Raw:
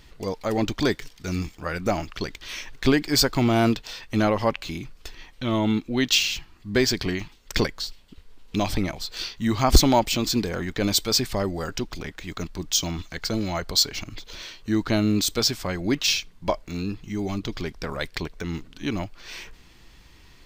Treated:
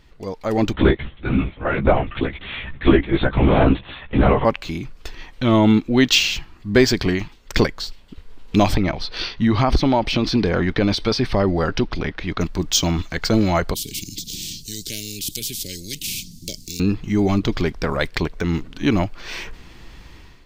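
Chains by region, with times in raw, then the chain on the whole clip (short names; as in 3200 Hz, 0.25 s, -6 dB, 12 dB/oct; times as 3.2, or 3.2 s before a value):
0.73–4.45 LPC vocoder at 8 kHz whisper + doubler 15 ms -4 dB
8.76–12.41 compressor, threshold -22 dBFS + polynomial smoothing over 15 samples
13.74–16.8 elliptic band-stop 180–5200 Hz, stop band 80 dB + spectral compressor 10:1
whole clip: high shelf 3500 Hz -8 dB; AGC gain up to 11.5 dB; gain -1 dB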